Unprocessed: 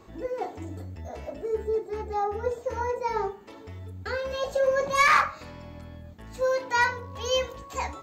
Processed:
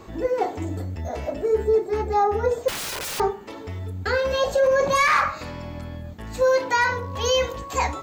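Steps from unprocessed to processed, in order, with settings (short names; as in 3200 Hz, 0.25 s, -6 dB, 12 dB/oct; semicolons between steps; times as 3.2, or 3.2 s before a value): limiter -20.5 dBFS, peak gain reduction 8.5 dB; 2.68–3.2 wrapped overs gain 34 dB; gain +8.5 dB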